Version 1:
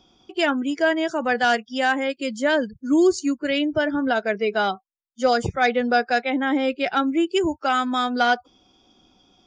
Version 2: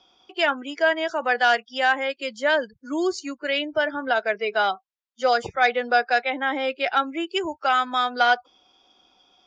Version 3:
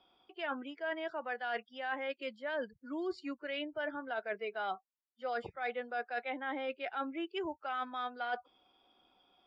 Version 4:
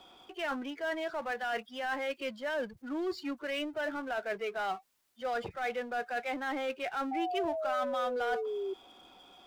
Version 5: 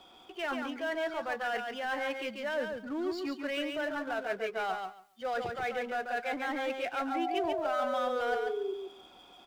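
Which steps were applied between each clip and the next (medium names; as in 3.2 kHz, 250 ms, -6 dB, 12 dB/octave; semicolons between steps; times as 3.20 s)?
three-band isolator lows -16 dB, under 470 Hz, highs -21 dB, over 6.1 kHz; trim +1.5 dB
reverse; compression 6:1, threshold -27 dBFS, peak gain reduction 13 dB; reverse; boxcar filter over 7 samples; trim -7 dB
power-law waveshaper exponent 0.7; painted sound fall, 7.11–8.74 s, 380–790 Hz -35 dBFS
feedback delay 140 ms, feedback 17%, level -5 dB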